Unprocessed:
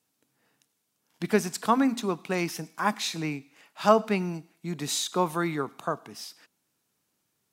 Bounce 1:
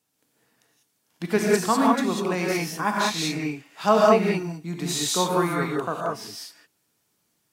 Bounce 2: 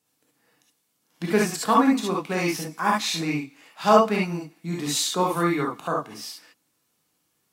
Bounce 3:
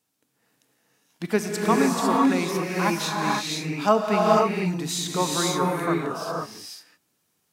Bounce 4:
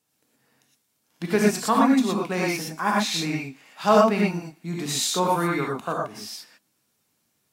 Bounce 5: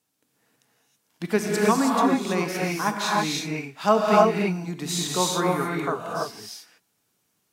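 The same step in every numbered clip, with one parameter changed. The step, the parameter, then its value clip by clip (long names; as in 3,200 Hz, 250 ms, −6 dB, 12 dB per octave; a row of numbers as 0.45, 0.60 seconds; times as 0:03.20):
reverb whose tail is shaped and stops, gate: 220, 90, 530, 140, 350 milliseconds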